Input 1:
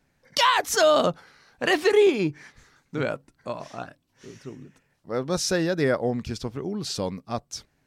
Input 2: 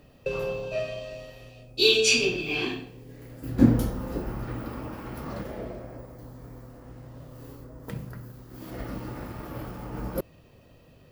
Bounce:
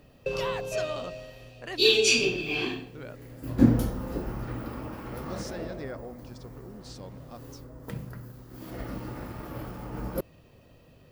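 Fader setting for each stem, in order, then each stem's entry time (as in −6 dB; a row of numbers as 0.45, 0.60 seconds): −16.5, −1.0 decibels; 0.00, 0.00 seconds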